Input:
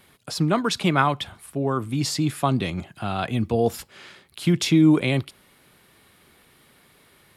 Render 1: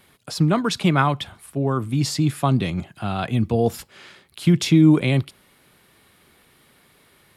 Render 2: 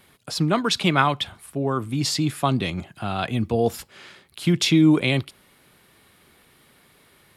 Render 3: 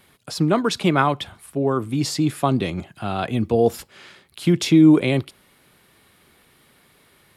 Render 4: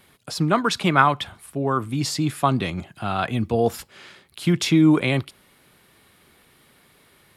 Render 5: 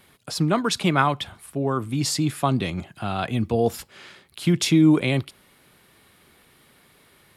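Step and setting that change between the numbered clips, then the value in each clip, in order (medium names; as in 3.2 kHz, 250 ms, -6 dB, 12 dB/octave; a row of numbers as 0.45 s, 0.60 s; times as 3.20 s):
dynamic bell, frequency: 140 Hz, 3.4 kHz, 400 Hz, 1.3 kHz, 9.4 kHz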